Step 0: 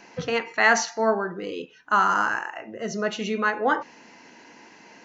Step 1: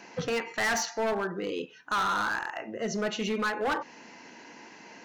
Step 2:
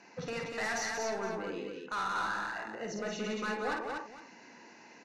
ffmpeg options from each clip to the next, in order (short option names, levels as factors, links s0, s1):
-filter_complex "[0:a]highpass=80,asplit=2[s0][s1];[s1]acompressor=threshold=0.0355:ratio=6,volume=0.841[s2];[s0][s2]amix=inputs=2:normalize=0,volume=9.44,asoftclip=hard,volume=0.106,volume=0.562"
-filter_complex "[0:a]lowpass=10000,bandreject=f=3200:w=6.9,asplit=2[s0][s1];[s1]aecho=0:1:51|179|243|464:0.596|0.501|0.668|0.168[s2];[s0][s2]amix=inputs=2:normalize=0,volume=0.376"